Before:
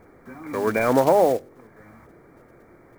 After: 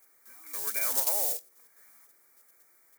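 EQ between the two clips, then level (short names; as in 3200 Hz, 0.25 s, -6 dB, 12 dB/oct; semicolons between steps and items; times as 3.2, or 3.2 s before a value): tone controls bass +1 dB, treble +10 dB; pre-emphasis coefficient 0.97; low shelf 340 Hz -9 dB; 0.0 dB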